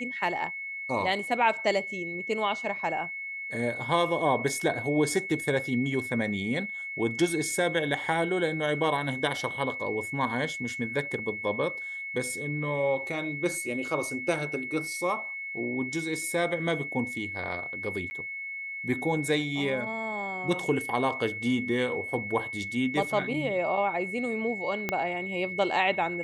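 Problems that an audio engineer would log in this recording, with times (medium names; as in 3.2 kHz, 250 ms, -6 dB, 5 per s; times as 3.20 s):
whine 2.2 kHz -34 dBFS
18.10–18.11 s: dropout 10 ms
24.89 s: pop -13 dBFS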